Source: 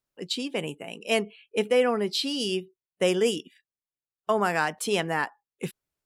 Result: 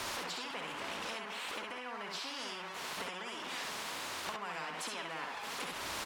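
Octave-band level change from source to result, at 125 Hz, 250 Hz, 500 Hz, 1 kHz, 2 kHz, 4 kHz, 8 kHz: -18.0, -18.5, -20.0, -8.5, -8.0, -8.5, -6.0 dB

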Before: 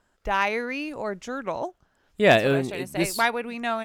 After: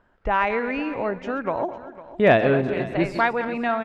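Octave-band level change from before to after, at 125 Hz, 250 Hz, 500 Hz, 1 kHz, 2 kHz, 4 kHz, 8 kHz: +2.5 dB, +3.5 dB, +3.0 dB, +3.0 dB, +0.5 dB, -6.5 dB, under -15 dB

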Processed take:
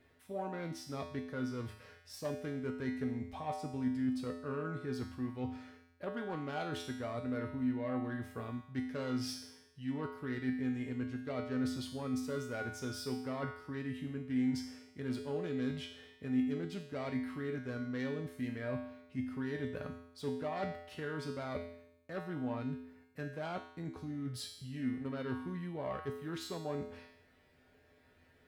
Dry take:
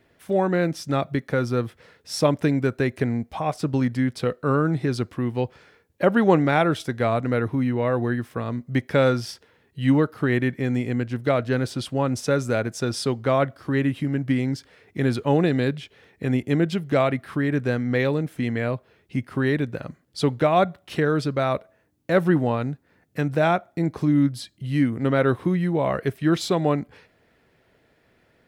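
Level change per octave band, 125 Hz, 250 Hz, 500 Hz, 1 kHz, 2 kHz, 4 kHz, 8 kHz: -18.5, -14.0, -17.5, -17.5, -16.5, -13.5, -13.0 dB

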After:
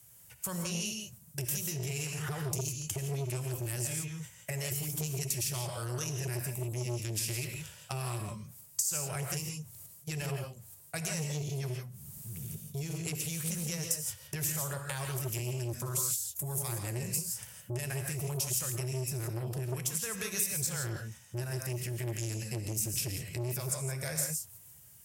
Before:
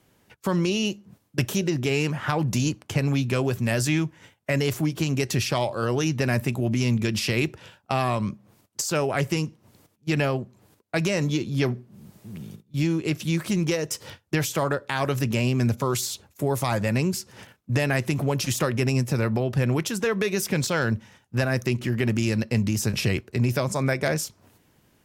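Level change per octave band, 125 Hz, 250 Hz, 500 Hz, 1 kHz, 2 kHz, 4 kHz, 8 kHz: -10.0, -16.0, -15.0, -14.5, -13.5, -9.0, +0.5 dB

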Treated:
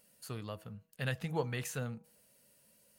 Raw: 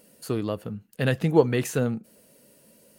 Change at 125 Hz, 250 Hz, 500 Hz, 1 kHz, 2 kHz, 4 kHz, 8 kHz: -11.5, -17.0, -16.5, -10.5, -8.5, -8.0, -8.0 dB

